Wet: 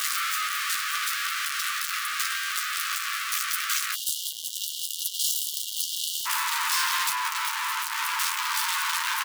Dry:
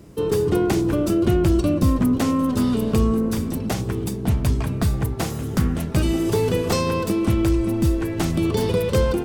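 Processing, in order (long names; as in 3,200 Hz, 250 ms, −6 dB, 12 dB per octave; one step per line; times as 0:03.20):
sign of each sample alone
linear-phase brick-wall high-pass 1,100 Hz, from 0:03.93 2,800 Hz, from 0:06.25 860 Hz
double-tracking delay 12 ms −7 dB
saturating transformer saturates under 3,000 Hz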